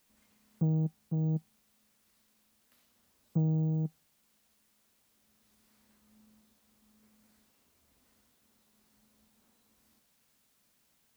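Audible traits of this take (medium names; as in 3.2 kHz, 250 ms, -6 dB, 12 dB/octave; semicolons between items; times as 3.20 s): a quantiser's noise floor 12-bit, dither triangular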